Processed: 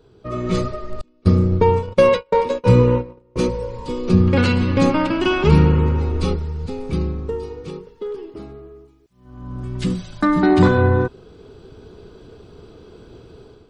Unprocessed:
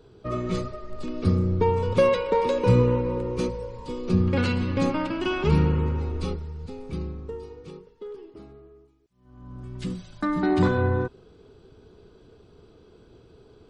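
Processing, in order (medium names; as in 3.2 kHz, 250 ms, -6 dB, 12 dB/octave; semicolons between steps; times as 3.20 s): level rider gain up to 10 dB; 1.01–3.36 s: gate -16 dBFS, range -33 dB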